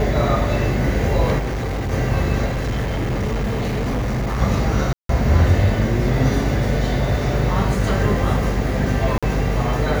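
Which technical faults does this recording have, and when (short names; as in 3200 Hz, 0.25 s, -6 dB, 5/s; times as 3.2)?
buzz 50 Hz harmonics 16 -23 dBFS
1.38–1.93 clipped -20.5 dBFS
2.45–4.42 clipped -18.5 dBFS
4.93–5.09 gap 0.163 s
9.18–9.23 gap 46 ms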